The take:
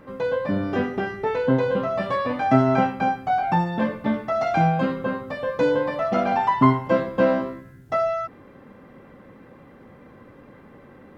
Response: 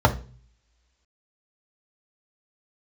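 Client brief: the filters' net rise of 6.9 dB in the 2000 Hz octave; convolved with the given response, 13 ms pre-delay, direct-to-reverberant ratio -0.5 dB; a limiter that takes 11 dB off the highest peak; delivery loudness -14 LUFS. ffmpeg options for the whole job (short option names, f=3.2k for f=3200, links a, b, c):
-filter_complex "[0:a]equalizer=f=2k:t=o:g=9,alimiter=limit=-13dB:level=0:latency=1,asplit=2[a][b];[1:a]atrim=start_sample=2205,adelay=13[c];[b][c]afir=irnorm=-1:irlink=0,volume=-19dB[d];[a][d]amix=inputs=2:normalize=0,volume=4.5dB"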